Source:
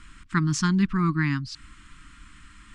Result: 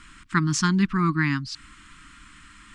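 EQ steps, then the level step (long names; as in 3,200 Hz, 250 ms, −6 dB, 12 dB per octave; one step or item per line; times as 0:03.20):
low-shelf EQ 140 Hz −8.5 dB
+3.5 dB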